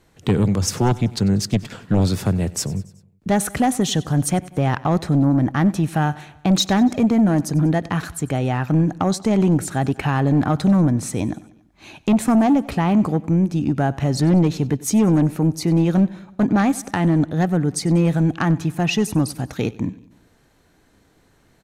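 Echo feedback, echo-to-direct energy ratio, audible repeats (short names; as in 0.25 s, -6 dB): 56%, -19.0 dB, 3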